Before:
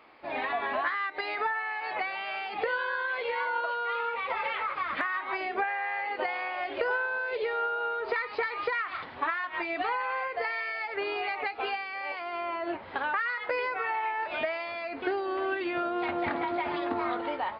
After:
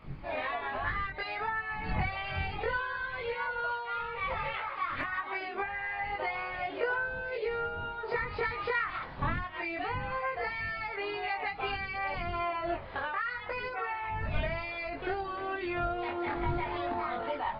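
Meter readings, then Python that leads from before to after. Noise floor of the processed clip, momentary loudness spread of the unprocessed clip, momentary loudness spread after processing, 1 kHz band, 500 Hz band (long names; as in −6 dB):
−41 dBFS, 4 LU, 3 LU, −3.0 dB, −3.5 dB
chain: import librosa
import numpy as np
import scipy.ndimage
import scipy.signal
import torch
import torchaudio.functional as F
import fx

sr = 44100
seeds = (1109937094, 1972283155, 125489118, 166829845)

y = fx.dmg_wind(x, sr, seeds[0], corner_hz=120.0, level_db=-41.0)
y = fx.rider(y, sr, range_db=3, speed_s=0.5)
y = fx.chorus_voices(y, sr, voices=2, hz=0.29, base_ms=22, depth_ms=1.2, mix_pct=50)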